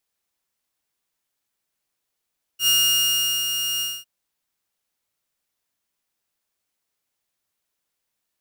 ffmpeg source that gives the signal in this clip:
ffmpeg -f lavfi -i "aevalsrc='0.237*(2*mod(2840*t,1)-1)':duration=1.454:sample_rate=44100,afade=type=in:duration=0.083,afade=type=out:start_time=0.083:duration=0.776:silence=0.422,afade=type=out:start_time=1.22:duration=0.234" out.wav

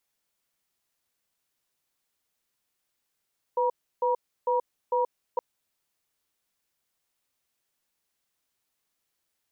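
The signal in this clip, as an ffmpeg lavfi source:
ffmpeg -f lavfi -i "aevalsrc='0.0596*(sin(2*PI*498*t)+sin(2*PI*956*t))*clip(min(mod(t,0.45),0.13-mod(t,0.45))/0.005,0,1)':duration=1.82:sample_rate=44100" out.wav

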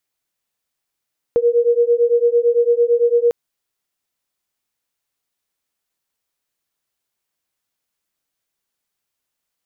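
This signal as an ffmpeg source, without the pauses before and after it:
ffmpeg -f lavfi -i "aevalsrc='0.178*(sin(2*PI*470*t)+sin(2*PI*478.9*t))':duration=1.95:sample_rate=44100" out.wav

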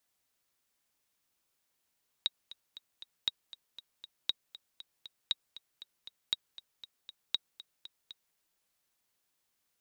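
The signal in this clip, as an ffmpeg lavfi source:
ffmpeg -f lavfi -i "aevalsrc='pow(10,(-15.5-17.5*gte(mod(t,4*60/236),60/236))/20)*sin(2*PI*3800*mod(t,60/236))*exp(-6.91*mod(t,60/236)/0.03)':duration=6.1:sample_rate=44100" out.wav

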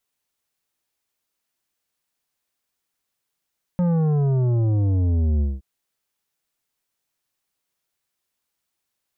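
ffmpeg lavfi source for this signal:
ffmpeg -f lavfi -i "aevalsrc='0.126*clip((1.82-t)/0.2,0,1)*tanh(3.16*sin(2*PI*180*1.82/log(65/180)*(exp(log(65/180)*t/1.82)-1)))/tanh(3.16)':duration=1.82:sample_rate=44100" out.wav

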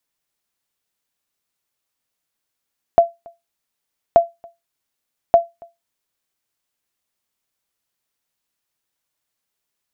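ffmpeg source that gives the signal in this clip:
ffmpeg -f lavfi -i "aevalsrc='0.794*(sin(2*PI*680*mod(t,1.18))*exp(-6.91*mod(t,1.18)/0.2)+0.0355*sin(2*PI*680*max(mod(t,1.18)-0.28,0))*exp(-6.91*max(mod(t,1.18)-0.28,0)/0.2))':duration=3.54:sample_rate=44100" out.wav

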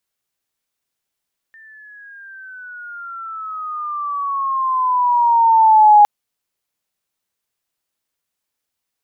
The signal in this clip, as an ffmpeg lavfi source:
ffmpeg -f lavfi -i "aevalsrc='pow(10,(-4.5+36*(t/4.51-1))/20)*sin(2*PI*1800*4.51/(-13.5*log(2)/12)*(exp(-13.5*log(2)/12*t/4.51)-1))':duration=4.51:sample_rate=44100" out.wav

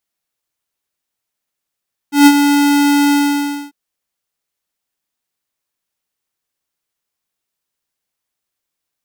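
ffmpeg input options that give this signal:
ffmpeg -f lavfi -i "aevalsrc='0.631*(2*lt(mod(287*t,1),0.5)-1)':duration=1.595:sample_rate=44100,afade=type=in:duration=0.144,afade=type=out:start_time=0.144:duration=0.053:silence=0.422,afade=type=out:start_time=0.99:duration=0.605" out.wav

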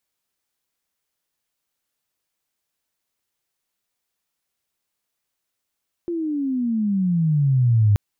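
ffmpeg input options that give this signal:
ffmpeg -f lavfi -i "aevalsrc='pow(10,(-22.5+10.5*t/1.88)/20)*sin(2*PI*350*1.88/log(100/350)*(exp(log(100/350)*t/1.88)-1))':duration=1.88:sample_rate=44100" out.wav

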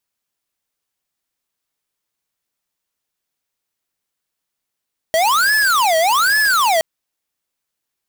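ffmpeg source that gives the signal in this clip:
ffmpeg -f lavfi -i "aevalsrc='0.188*(2*lt(mod((1185*t-545/(2*PI*1.2)*sin(2*PI*1.2*t)),1),0.5)-1)':duration=1.67:sample_rate=44100" out.wav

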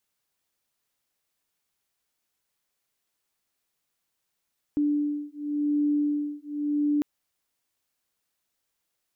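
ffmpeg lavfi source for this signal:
ffmpeg -f lavfi -i "aevalsrc='0.0473*(sin(2*PI*293*t)+sin(2*PI*293.91*t))':duration=2.25:sample_rate=44100" out.wav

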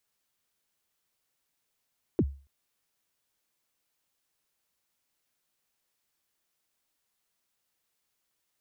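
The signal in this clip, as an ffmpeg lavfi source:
ffmpeg -f lavfi -i "aevalsrc='0.133*pow(10,-3*t/0.36)*sin(2*PI*(430*0.051/log(69/430)*(exp(log(69/430)*min(t,0.051)/0.051)-1)+69*max(t-0.051,0)))':duration=0.28:sample_rate=44100" out.wav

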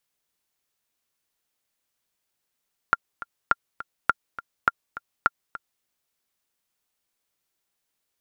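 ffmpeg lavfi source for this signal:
ffmpeg -f lavfi -i "aevalsrc='pow(10,(-4.5-16*gte(mod(t,2*60/206),60/206))/20)*sin(2*PI*1390*mod(t,60/206))*exp(-6.91*mod(t,60/206)/0.03)':duration=2.91:sample_rate=44100" out.wav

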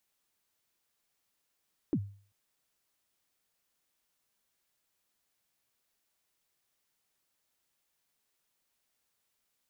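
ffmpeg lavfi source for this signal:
ffmpeg -f lavfi -i "aevalsrc='0.0708*pow(10,-3*t/0.44)*sin(2*PI*(360*0.061/log(100/360)*(exp(log(100/360)*min(t,0.061)/0.061)-1)+100*max(t-0.061,0)))':duration=0.39:sample_rate=44100" out.wav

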